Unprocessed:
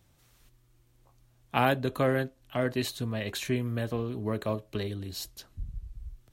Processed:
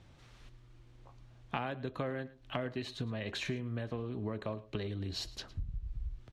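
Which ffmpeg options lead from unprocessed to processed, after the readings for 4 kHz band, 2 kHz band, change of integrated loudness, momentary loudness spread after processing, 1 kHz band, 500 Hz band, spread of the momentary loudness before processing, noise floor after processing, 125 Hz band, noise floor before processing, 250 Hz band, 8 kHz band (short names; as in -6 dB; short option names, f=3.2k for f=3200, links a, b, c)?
-4.5 dB, -8.5 dB, -8.5 dB, 21 LU, -10.0 dB, -9.0 dB, 16 LU, -59 dBFS, -6.5 dB, -65 dBFS, -7.5 dB, -10.0 dB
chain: -af "lowpass=4.2k,acompressor=threshold=-41dB:ratio=8,aecho=1:1:110:0.119,volume=6.5dB"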